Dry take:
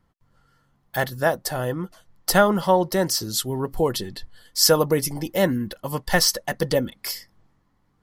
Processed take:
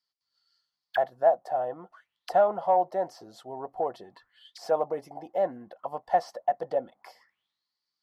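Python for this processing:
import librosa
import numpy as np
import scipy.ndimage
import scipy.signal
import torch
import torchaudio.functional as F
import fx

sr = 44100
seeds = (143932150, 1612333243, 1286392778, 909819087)

y = fx.cheby_harmonics(x, sr, harmonics=(5,), levels_db=(-20,), full_scale_db=-3.5)
y = fx.auto_wah(y, sr, base_hz=710.0, top_hz=4800.0, q=8.2, full_db=-23.5, direction='down')
y = y * 10.0 ** (4.5 / 20.0)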